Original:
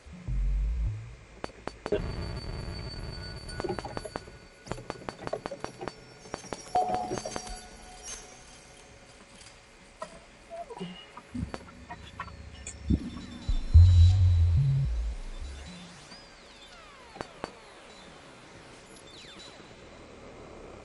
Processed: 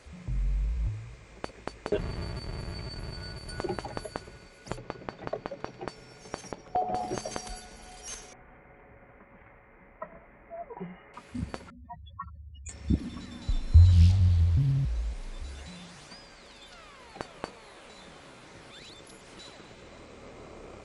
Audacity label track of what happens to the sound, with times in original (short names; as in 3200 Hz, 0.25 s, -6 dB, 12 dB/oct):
4.770000	5.880000	air absorption 140 m
6.520000	6.950000	tape spacing loss at 10 kHz 28 dB
8.330000	11.140000	elliptic low-pass 2100 Hz, stop band 60 dB
11.700000	12.690000	spectral contrast raised exponent 3.8
13.920000	14.890000	Doppler distortion depth 0.86 ms
18.700000	19.370000	reverse